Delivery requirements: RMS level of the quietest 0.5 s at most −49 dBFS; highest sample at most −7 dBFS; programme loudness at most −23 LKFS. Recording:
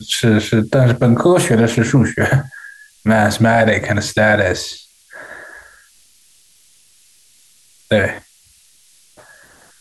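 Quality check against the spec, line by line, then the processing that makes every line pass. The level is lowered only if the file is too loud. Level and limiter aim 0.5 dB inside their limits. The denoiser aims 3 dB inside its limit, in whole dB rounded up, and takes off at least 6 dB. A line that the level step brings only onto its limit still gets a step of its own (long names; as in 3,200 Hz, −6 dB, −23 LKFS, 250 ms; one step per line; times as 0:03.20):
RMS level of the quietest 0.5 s −51 dBFS: in spec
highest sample −3.5 dBFS: out of spec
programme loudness −14.5 LKFS: out of spec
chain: level −9 dB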